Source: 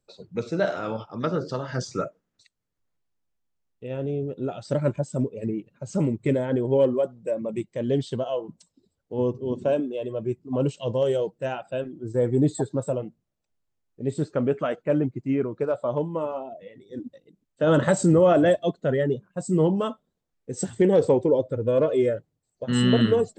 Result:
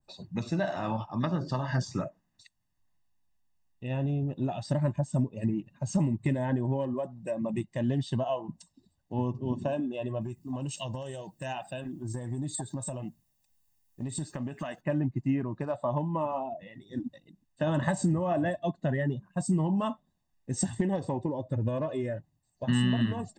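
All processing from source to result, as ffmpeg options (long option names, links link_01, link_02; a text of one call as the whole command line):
ffmpeg -i in.wav -filter_complex "[0:a]asettb=1/sr,asplit=3[link_01][link_02][link_03];[link_01]atrim=end=10.214[link_04];[link_02]atrim=start=10.21:end=14.81,asetpts=PTS-STARTPTS,afade=type=in:duration=0.004:curve=qsin,afade=type=out:start_time=4.596:duration=0.004:curve=qsin,aemphasis=mode=production:type=75kf,acompressor=threshold=-32dB:ratio=8:attack=3.2:release=140:knee=1:detection=peak[link_05];[link_03]atrim=start=14.806[link_06];[link_04][link_05]acrossfade=duration=0.004:curve1=hsin:curve2=qsin[link_07];[link_07][link_06]acrossfade=duration=0.004:curve1=qsin:curve2=hsin,acompressor=threshold=-25dB:ratio=6,aecho=1:1:1.1:0.82,adynamicequalizer=threshold=0.00447:dfrequency=2200:dqfactor=0.7:tfrequency=2200:tqfactor=0.7:attack=5:release=100:ratio=0.375:range=3:mode=cutabove:tftype=highshelf" out.wav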